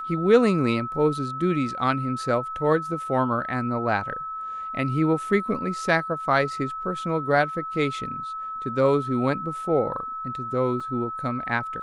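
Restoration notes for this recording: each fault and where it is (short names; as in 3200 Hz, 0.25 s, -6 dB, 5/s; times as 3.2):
tone 1300 Hz -30 dBFS
10.8 gap 3.5 ms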